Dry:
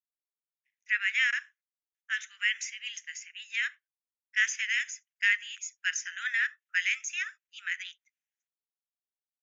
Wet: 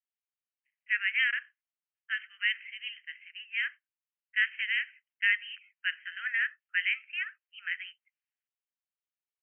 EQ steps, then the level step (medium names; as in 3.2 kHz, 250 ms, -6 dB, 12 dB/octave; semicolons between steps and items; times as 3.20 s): high-pass 1.3 kHz 12 dB/octave; brick-wall FIR low-pass 3.2 kHz; 0.0 dB